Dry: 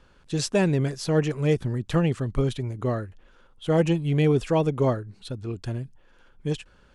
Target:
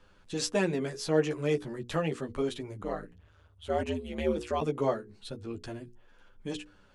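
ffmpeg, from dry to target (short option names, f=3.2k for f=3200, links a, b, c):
-filter_complex "[0:a]flanger=delay=9.9:depth=3.9:regen=-5:speed=0.31:shape=sinusoidal,acrossover=split=220[a][b];[a]acompressor=threshold=-43dB:ratio=6[c];[c][b]amix=inputs=2:normalize=0,asplit=3[d][e][f];[d]afade=t=out:st=2.82:d=0.02[g];[e]aeval=exprs='val(0)*sin(2*PI*80*n/s)':c=same,afade=t=in:st=2.82:d=0.02,afade=t=out:st=4.6:d=0.02[h];[f]afade=t=in:st=4.6:d=0.02[i];[g][h][i]amix=inputs=3:normalize=0,bandreject=f=60:t=h:w=6,bandreject=f=120:t=h:w=6,bandreject=f=180:t=h:w=6,bandreject=f=240:t=h:w=6,bandreject=f=300:t=h:w=6,bandreject=f=360:t=h:w=6,bandreject=f=420:t=h:w=6,bandreject=f=480:t=h:w=6"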